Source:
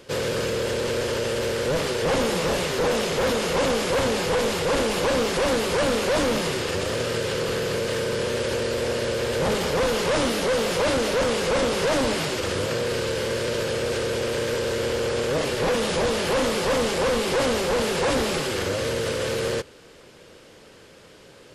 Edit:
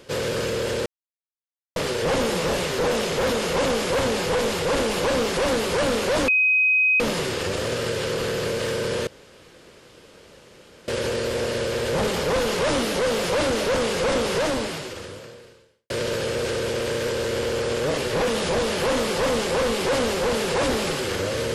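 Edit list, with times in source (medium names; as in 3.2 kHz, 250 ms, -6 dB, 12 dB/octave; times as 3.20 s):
0.86–1.76 s: mute
6.28 s: add tone 2.52 kHz -15.5 dBFS 0.72 s
8.35 s: insert room tone 1.81 s
11.82–13.37 s: fade out quadratic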